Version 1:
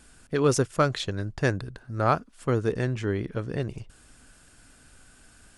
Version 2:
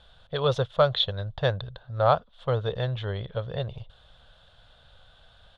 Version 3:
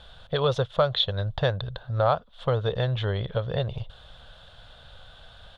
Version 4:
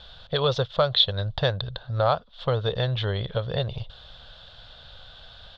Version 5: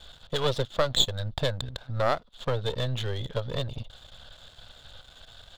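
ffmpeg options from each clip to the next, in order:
-af "firequalizer=gain_entry='entry(130,0);entry(290,-20);entry(530,6);entry(1500,-3);entry(2400,-8);entry(3500,13);entry(5000,-13);entry(8000,-26)':delay=0.05:min_phase=1"
-af "acompressor=threshold=-32dB:ratio=2,volume=7dB"
-af "lowpass=f=4.8k:t=q:w=2.5"
-af "aeval=exprs='if(lt(val(0),0),0.251*val(0),val(0))':c=same"

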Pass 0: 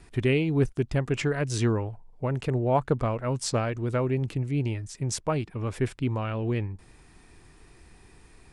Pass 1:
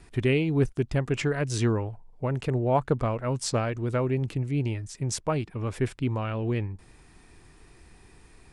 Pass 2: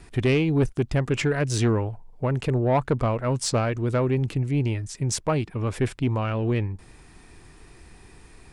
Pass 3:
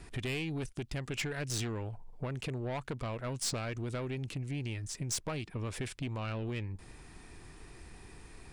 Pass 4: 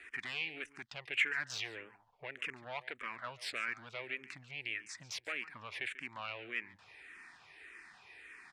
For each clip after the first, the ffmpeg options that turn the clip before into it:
-af anull
-af "asoftclip=type=tanh:threshold=-18dB,volume=4.5dB"
-filter_complex "[0:a]acrossover=split=2100[a][b];[a]acompressor=threshold=-31dB:ratio=10[c];[c][b]amix=inputs=2:normalize=0,aeval=exprs='(tanh(22.4*val(0)+0.25)-tanh(0.25))/22.4':c=same,volume=-2dB"
-filter_complex "[0:a]bandpass=f=2k:t=q:w=2.1:csg=0,aecho=1:1:141:0.141,asplit=2[a][b];[b]afreqshift=-1.7[c];[a][c]amix=inputs=2:normalize=1,volume=10.5dB"

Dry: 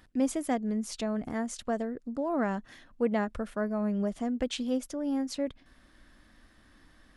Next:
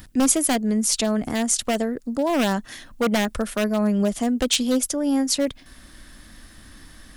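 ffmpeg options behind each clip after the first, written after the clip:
-filter_complex "[0:a]acrossover=split=240[a][b];[a]acompressor=mode=upward:threshold=-47dB:ratio=2.5[c];[b]aeval=exprs='0.0531*(abs(mod(val(0)/0.0531+3,4)-2)-1)':c=same[d];[c][d]amix=inputs=2:normalize=0,crystalizer=i=3:c=0,volume=9dB"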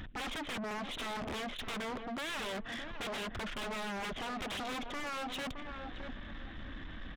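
-filter_complex "[0:a]aresample=8000,aeval=exprs='0.0355*(abs(mod(val(0)/0.0355+3,4)-2)-1)':c=same,aresample=44100,asplit=2[a][b];[b]adelay=617,lowpass=f=1.1k:p=1,volume=-9.5dB,asplit=2[c][d];[d]adelay=617,lowpass=f=1.1k:p=1,volume=0.3,asplit=2[e][f];[f]adelay=617,lowpass=f=1.1k:p=1,volume=0.3[g];[a][c][e][g]amix=inputs=4:normalize=0,asoftclip=type=tanh:threshold=-39.5dB,volume=2.5dB"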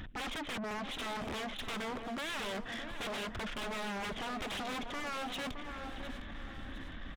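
-af "aecho=1:1:708|1416|2124|2832|3540:0.224|0.107|0.0516|0.0248|0.0119"

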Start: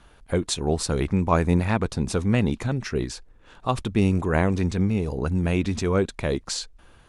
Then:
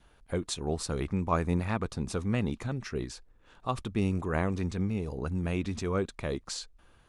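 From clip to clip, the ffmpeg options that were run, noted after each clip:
-af "adynamicequalizer=threshold=0.00447:dfrequency=1200:dqfactor=7.4:tfrequency=1200:tqfactor=7.4:attack=5:release=100:ratio=0.375:range=3:mode=boostabove:tftype=bell,volume=-8dB"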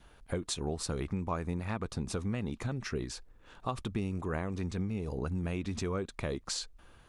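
-af "acompressor=threshold=-34dB:ratio=5,volume=3dB"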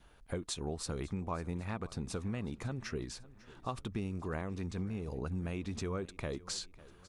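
-af "aecho=1:1:549|1098|1647:0.1|0.046|0.0212,volume=-3.5dB"

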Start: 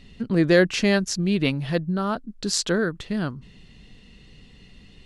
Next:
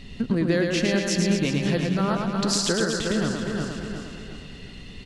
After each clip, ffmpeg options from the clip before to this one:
-filter_complex "[0:a]asplit=2[a][b];[b]aecho=0:1:357|714|1071|1428:0.282|0.113|0.0451|0.018[c];[a][c]amix=inputs=2:normalize=0,acompressor=threshold=-29dB:ratio=5,asplit=2[d][e];[e]aecho=0:1:110|236.5|382|549.3|741.7:0.631|0.398|0.251|0.158|0.1[f];[d][f]amix=inputs=2:normalize=0,volume=6.5dB"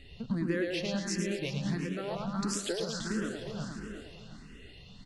-filter_complex "[0:a]asplit=2[a][b];[b]afreqshift=1.5[c];[a][c]amix=inputs=2:normalize=1,volume=-7dB"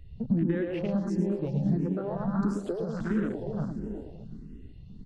-filter_complex "[0:a]asplit=2[a][b];[b]adynamicsmooth=sensitivity=1.5:basefreq=1.5k,volume=1.5dB[c];[a][c]amix=inputs=2:normalize=0,afwtdn=0.0141,acrossover=split=260[d][e];[e]acompressor=threshold=-31dB:ratio=5[f];[d][f]amix=inputs=2:normalize=0"

